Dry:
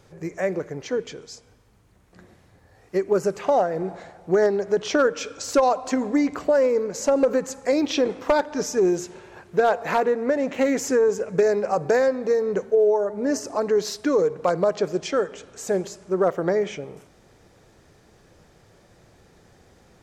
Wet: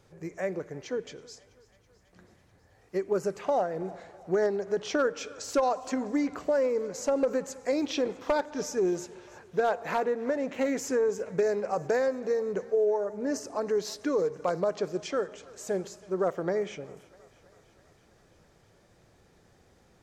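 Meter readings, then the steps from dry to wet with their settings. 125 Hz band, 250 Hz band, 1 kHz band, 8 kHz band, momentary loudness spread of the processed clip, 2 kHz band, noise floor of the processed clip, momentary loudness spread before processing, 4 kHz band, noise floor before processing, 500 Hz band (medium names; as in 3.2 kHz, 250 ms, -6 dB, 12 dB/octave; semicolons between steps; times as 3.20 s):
-7.0 dB, -7.0 dB, -7.0 dB, -7.0 dB, 9 LU, -7.0 dB, -62 dBFS, 9 LU, -7.0 dB, -56 dBFS, -7.0 dB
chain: thinning echo 326 ms, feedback 74%, high-pass 420 Hz, level -22 dB; trim -7 dB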